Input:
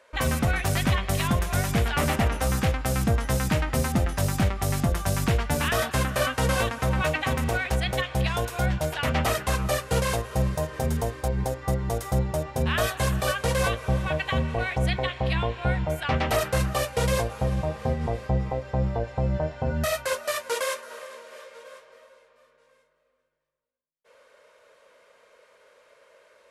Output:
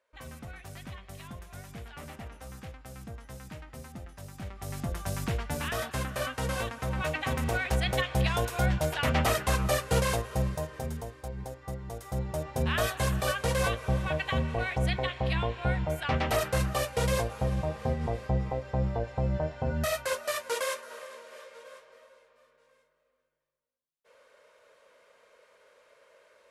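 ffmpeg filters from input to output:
-af "volume=7dB,afade=t=in:st=4.35:d=0.69:silence=0.251189,afade=t=in:st=6.86:d=1.08:silence=0.473151,afade=t=out:st=9.97:d=1.08:silence=0.298538,afade=t=in:st=11.99:d=0.59:silence=0.375837"

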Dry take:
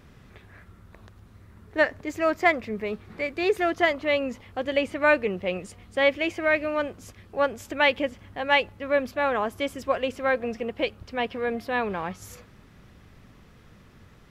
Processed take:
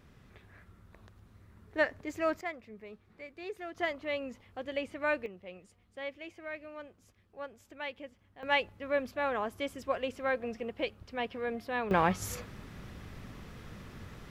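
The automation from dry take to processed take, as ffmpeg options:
-af "asetnsamples=n=441:p=0,asendcmd='2.41 volume volume -18dB;3.75 volume volume -11dB;5.26 volume volume -19dB;8.43 volume volume -7.5dB;11.91 volume volume 5dB',volume=-7dB"

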